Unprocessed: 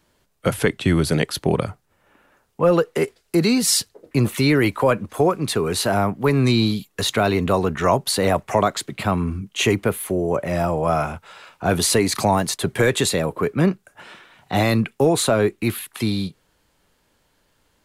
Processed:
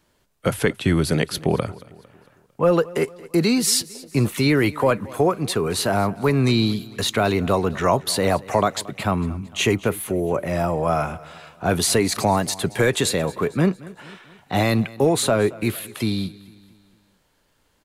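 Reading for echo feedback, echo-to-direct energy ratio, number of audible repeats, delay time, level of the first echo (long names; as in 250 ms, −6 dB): 49%, −19.5 dB, 3, 226 ms, −20.5 dB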